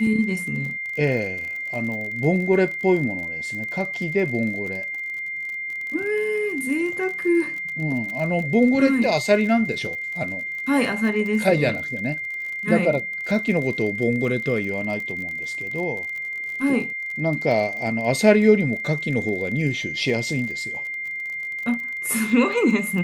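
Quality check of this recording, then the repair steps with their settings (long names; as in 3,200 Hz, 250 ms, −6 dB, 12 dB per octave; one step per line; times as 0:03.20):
surface crackle 38 per second −30 dBFS
whistle 2,100 Hz −27 dBFS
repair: click removal
notch filter 2,100 Hz, Q 30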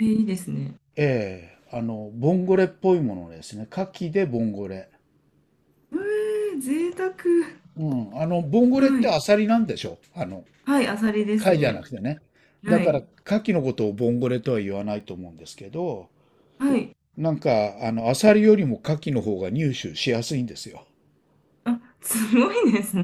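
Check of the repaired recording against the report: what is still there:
none of them is left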